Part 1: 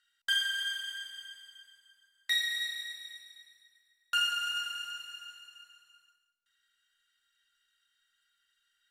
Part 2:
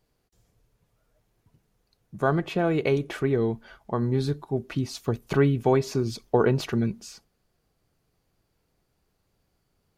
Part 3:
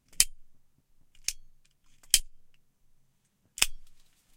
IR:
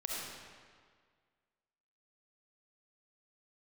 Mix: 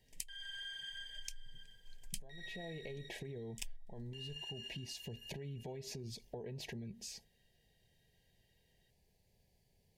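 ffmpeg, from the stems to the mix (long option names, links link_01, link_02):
-filter_complex "[0:a]aemphasis=mode=reproduction:type=75fm,volume=0.5dB[link_01];[1:a]equalizer=frequency=1100:width_type=o:width=0.58:gain=-12,acompressor=threshold=-25dB:ratio=6,volume=-1dB[link_02];[2:a]asubboost=boost=11:cutoff=60,volume=-6.5dB[link_03];[link_01][link_02]amix=inputs=2:normalize=0,equalizer=frequency=300:width_type=o:width=0.34:gain=-12,alimiter=level_in=5.5dB:limit=-24dB:level=0:latency=1:release=74,volume=-5.5dB,volume=0dB[link_04];[link_03][link_04]amix=inputs=2:normalize=0,asuperstop=centerf=1300:order=20:qfactor=2.3,acompressor=threshold=-43dB:ratio=6"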